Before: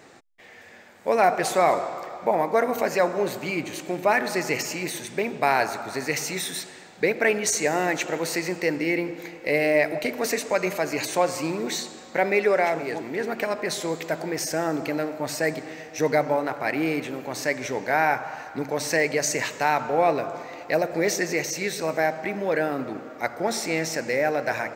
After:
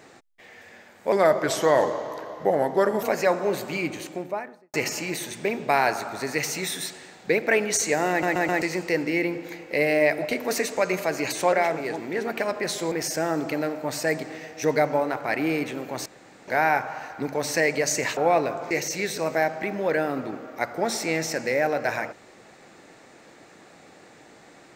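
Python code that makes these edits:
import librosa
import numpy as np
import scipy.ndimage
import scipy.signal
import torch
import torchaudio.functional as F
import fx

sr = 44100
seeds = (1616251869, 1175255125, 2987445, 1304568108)

y = fx.studio_fade_out(x, sr, start_s=3.57, length_s=0.9)
y = fx.edit(y, sr, fx.speed_span(start_s=1.12, length_s=1.64, speed=0.86),
    fx.stutter_over(start_s=7.83, slice_s=0.13, count=4),
    fx.cut(start_s=11.26, length_s=1.29),
    fx.cut(start_s=13.94, length_s=0.34),
    fx.room_tone_fill(start_s=17.42, length_s=0.42),
    fx.cut(start_s=19.53, length_s=0.36),
    fx.cut(start_s=20.43, length_s=0.9), tone=tone)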